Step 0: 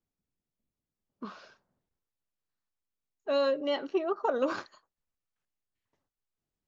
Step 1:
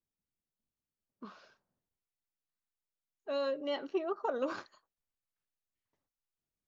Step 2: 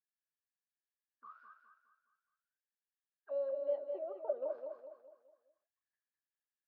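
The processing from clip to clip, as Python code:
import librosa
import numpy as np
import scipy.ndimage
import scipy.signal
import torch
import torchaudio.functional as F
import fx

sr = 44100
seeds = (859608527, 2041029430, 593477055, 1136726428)

y1 = fx.rider(x, sr, range_db=10, speed_s=0.5)
y1 = y1 * librosa.db_to_amplitude(-5.0)
y2 = fx.auto_wah(y1, sr, base_hz=600.0, top_hz=1700.0, q=16.0, full_db=-34.5, direction='down')
y2 = fx.echo_feedback(y2, sr, ms=207, feedback_pct=42, wet_db=-6.0)
y2 = y2 * librosa.db_to_amplitude(6.0)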